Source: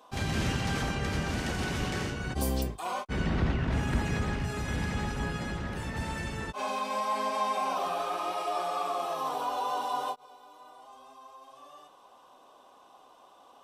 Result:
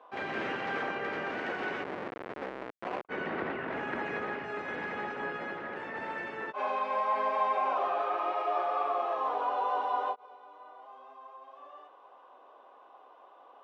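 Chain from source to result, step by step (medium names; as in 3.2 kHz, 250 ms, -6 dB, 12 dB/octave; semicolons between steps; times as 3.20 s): 1.83–3.05 s: Schmitt trigger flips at -29 dBFS; Chebyshev band-pass 400–2000 Hz, order 2; trim +2 dB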